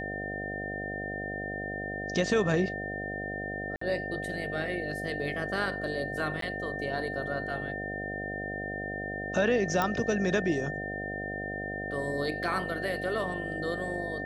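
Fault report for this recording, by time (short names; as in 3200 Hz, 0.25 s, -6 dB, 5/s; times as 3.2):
buzz 50 Hz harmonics 15 -38 dBFS
tone 1800 Hz -36 dBFS
3.76–3.81 gap 54 ms
6.41–6.42 gap 13 ms
9.82 pop -14 dBFS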